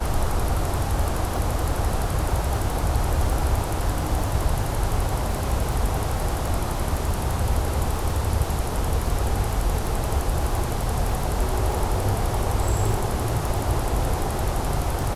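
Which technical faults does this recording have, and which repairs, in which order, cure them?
crackle 23 per s -27 dBFS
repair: de-click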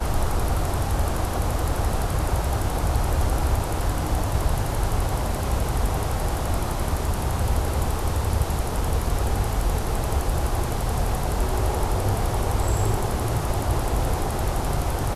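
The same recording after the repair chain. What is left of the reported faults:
nothing left

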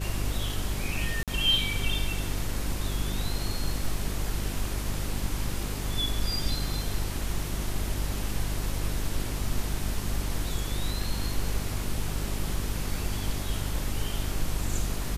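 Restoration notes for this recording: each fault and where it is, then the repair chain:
hum 50 Hz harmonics 8 -33 dBFS
1.23–1.28 s: dropout 47 ms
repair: de-hum 50 Hz, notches 8; interpolate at 1.23 s, 47 ms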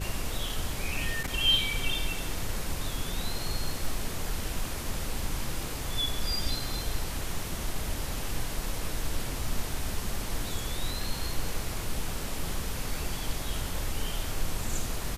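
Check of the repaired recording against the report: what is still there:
nothing left

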